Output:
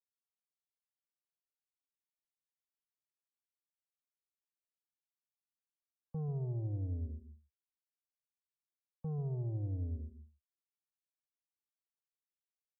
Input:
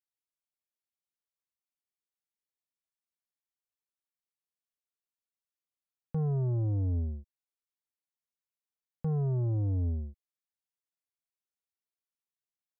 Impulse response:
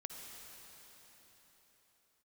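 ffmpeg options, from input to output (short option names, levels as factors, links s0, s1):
-filter_complex "[0:a]asplit=2[s0][s1];[1:a]atrim=start_sample=2205,atrim=end_sample=6174,adelay=140[s2];[s1][s2]afir=irnorm=-1:irlink=0,volume=0.562[s3];[s0][s3]amix=inputs=2:normalize=0,afftdn=nr=22:nf=-49,volume=0.376"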